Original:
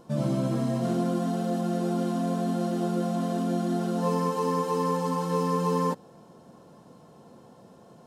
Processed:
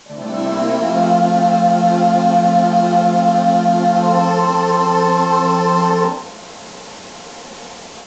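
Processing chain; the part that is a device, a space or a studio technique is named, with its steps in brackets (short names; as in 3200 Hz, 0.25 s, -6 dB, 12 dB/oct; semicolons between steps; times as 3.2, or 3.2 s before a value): filmed off a television (BPF 250–7500 Hz; bell 830 Hz +9 dB 0.41 oct; reverb RT60 0.50 s, pre-delay 0.113 s, DRR -7.5 dB; white noise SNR 20 dB; AGC gain up to 8 dB; AAC 32 kbps 16000 Hz)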